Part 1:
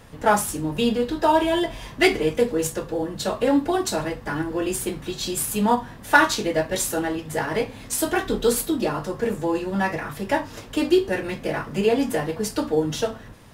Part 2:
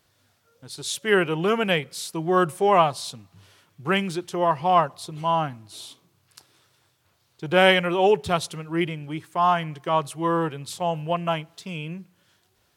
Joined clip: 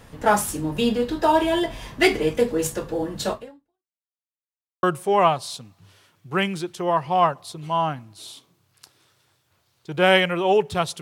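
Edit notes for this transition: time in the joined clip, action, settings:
part 1
0:03.32–0:04.03: fade out exponential
0:04.03–0:04.83: silence
0:04.83: continue with part 2 from 0:02.37

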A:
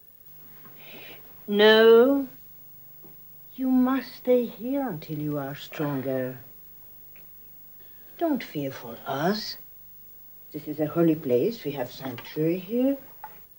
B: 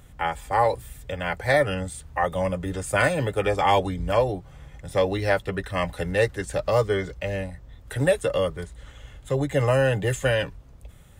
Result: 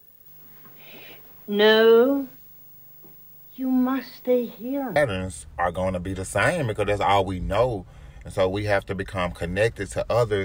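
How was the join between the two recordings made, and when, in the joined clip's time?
A
0:04.96: continue with B from 0:01.54

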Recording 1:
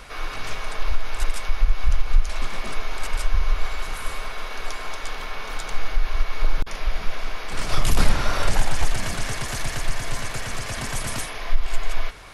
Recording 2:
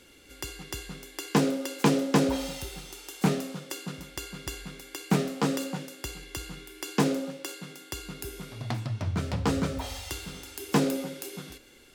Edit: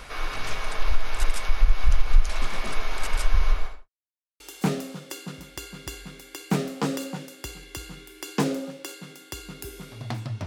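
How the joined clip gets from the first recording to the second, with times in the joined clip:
recording 1
0:03.45–0:03.89: fade out and dull
0:03.89–0:04.40: silence
0:04.40: continue with recording 2 from 0:03.00

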